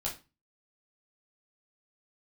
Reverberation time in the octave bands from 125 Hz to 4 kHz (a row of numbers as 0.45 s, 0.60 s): 0.45 s, 0.40 s, 0.30 s, 0.30 s, 0.25 s, 0.25 s